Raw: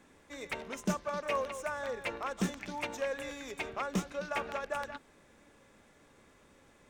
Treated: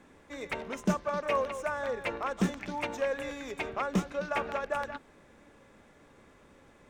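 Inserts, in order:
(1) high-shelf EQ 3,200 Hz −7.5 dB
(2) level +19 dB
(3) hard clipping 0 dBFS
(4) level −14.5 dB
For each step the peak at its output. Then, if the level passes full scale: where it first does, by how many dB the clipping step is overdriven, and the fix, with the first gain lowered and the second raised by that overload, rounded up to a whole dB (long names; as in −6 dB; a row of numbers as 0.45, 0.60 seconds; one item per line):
−21.0, −2.0, −2.0, −16.5 dBFS
no step passes full scale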